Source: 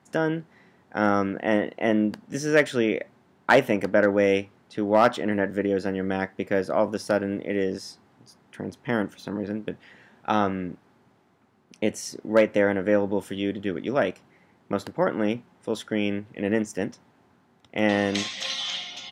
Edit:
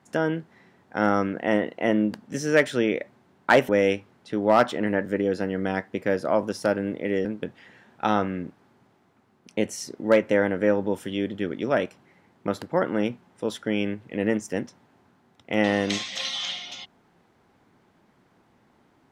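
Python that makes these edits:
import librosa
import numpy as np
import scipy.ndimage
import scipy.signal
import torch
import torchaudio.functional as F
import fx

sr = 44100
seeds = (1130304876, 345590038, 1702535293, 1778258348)

y = fx.edit(x, sr, fx.cut(start_s=3.69, length_s=0.45),
    fx.cut(start_s=7.7, length_s=1.8), tone=tone)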